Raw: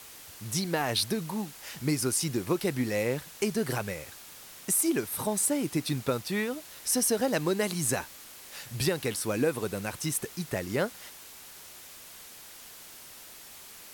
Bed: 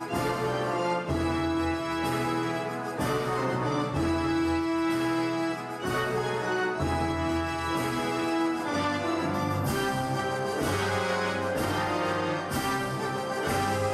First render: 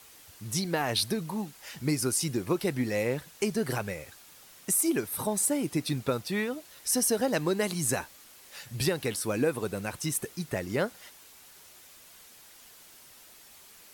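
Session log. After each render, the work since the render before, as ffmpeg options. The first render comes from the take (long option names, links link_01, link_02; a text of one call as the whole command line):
ffmpeg -i in.wav -af "afftdn=noise_reduction=6:noise_floor=-48" out.wav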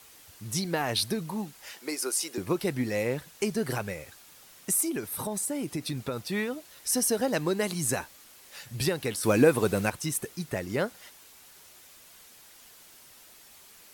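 ffmpeg -i in.wav -filter_complex "[0:a]asettb=1/sr,asplit=3[link_01][link_02][link_03];[link_01]atrim=end=1.734[link_04];[link_02]atrim=start=1.73:end=2.38,asetpts=PTS-STARTPTS,afade=type=in:duration=0.004:curve=qsin,afade=type=out:start_time=0.646:duration=0.004:curve=qsin,highpass=frequency=360:width=0.5412,highpass=frequency=360:width=1.3066[link_05];[link_03]atrim=start=2.376[link_06];[link_04][link_05]acrossfade=duration=0.004:curve1=hsin:curve2=qsin[link_07];[link_07][link_06]acrossfade=duration=0.004:curve1=qsin:curve2=hsin,asettb=1/sr,asplit=3[link_08][link_09][link_10];[link_08]atrim=end=4.834[link_11];[link_09]atrim=start=4.83:end=6.17,asetpts=PTS-STARTPTS,afade=type=in:duration=0.004:curve=qsin,afade=type=out:start_time=1.336:duration=0.004:curve=qsin,acompressor=threshold=-29dB:ratio=2.5:attack=3.2:release=140:knee=1:detection=peak[link_12];[link_10]atrim=start=6.166[link_13];[link_11][link_12]acrossfade=duration=0.004:curve1=hsin:curve2=qsin[link_14];[link_14][link_13]acrossfade=duration=0.004:curve1=qsin:curve2=hsin,asettb=1/sr,asplit=3[link_15][link_16][link_17];[link_15]atrim=end=9.234[link_18];[link_16]atrim=start=9.23:end=9.9,asetpts=PTS-STARTPTS,afade=type=in:duration=0.004:curve=qsin,afade=type=out:start_time=0.666:duration=0.004:curve=qsin,acontrast=82[link_19];[link_17]atrim=start=9.896[link_20];[link_18][link_19]acrossfade=duration=0.004:curve1=hsin:curve2=qsin[link_21];[link_21][link_20]acrossfade=duration=0.004:curve1=qsin:curve2=hsin" out.wav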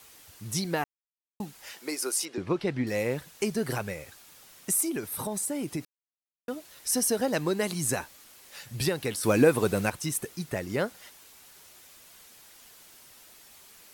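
ffmpeg -i in.wav -filter_complex "[0:a]asettb=1/sr,asplit=3[link_01][link_02][link_03];[link_01]atrim=end=2.254[link_04];[link_02]atrim=start=2.25:end=2.87,asetpts=PTS-STARTPTS,afade=type=in:duration=0.004:curve=qsin,afade=type=out:start_time=0.616:duration=0.004:curve=qsin,lowpass=4100[link_05];[link_03]atrim=start=2.866[link_06];[link_04][link_05]acrossfade=duration=0.004:curve1=hsin:curve2=qsin[link_07];[link_07][link_06]acrossfade=duration=0.004:curve1=qsin:curve2=hsin,asplit=5[link_08][link_09][link_10][link_11][link_12];[link_08]atrim=end=0.84,asetpts=PTS-STARTPTS,afade=type=out:start_time=0.836:duration=0.004:curve=hsin[link_13];[link_09]atrim=start=0.84:end=1.4,asetpts=PTS-STARTPTS,volume=0[link_14];[link_10]atrim=start=1.4:end=5.85,asetpts=PTS-STARTPTS,afade=type=in:duration=0.004:curve=hsin,afade=type=out:start_time=4.446:duration=0.004:curve=hsin[link_15];[link_11]atrim=start=5.85:end=6.48,asetpts=PTS-STARTPTS,volume=0[link_16];[link_12]atrim=start=6.48,asetpts=PTS-STARTPTS,afade=type=in:duration=0.004:curve=hsin[link_17];[link_13][link_14][link_15][link_16][link_17]concat=n=5:v=0:a=1" out.wav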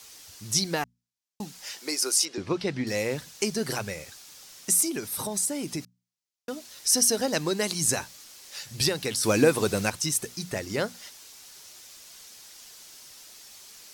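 ffmpeg -i in.wav -af "equalizer=frequency=5500:width=0.92:gain=10,bandreject=frequency=60:width_type=h:width=6,bandreject=frequency=120:width_type=h:width=6,bandreject=frequency=180:width_type=h:width=6,bandreject=frequency=240:width_type=h:width=6" out.wav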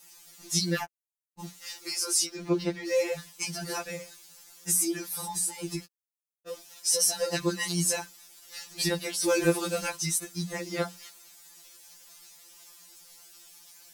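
ffmpeg -i in.wav -filter_complex "[0:a]acrossover=split=7400[link_01][link_02];[link_01]aeval=exprs='val(0)*gte(abs(val(0)),0.00422)':channel_layout=same[link_03];[link_03][link_02]amix=inputs=2:normalize=0,afftfilt=real='re*2.83*eq(mod(b,8),0)':imag='im*2.83*eq(mod(b,8),0)':win_size=2048:overlap=0.75" out.wav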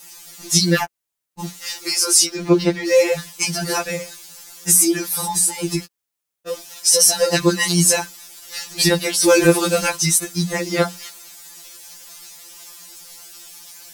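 ffmpeg -i in.wav -af "volume=12dB,alimiter=limit=-2dB:level=0:latency=1" out.wav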